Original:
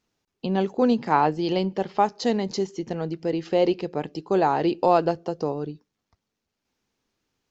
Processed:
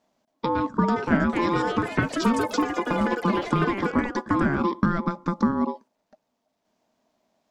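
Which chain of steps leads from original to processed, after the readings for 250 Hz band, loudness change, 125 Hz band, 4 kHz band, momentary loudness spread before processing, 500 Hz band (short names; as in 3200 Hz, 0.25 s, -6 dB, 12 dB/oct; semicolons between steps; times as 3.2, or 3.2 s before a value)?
+2.5 dB, 0.0 dB, +3.5 dB, -1.5 dB, 10 LU, -5.0 dB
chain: ring modulator 690 Hz; compressor 6:1, threshold -28 dBFS, peak gain reduction 13 dB; small resonant body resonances 230/630 Hz, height 15 dB, ringing for 35 ms; echoes that change speed 0.571 s, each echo +6 st, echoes 3, each echo -6 dB; gain +3.5 dB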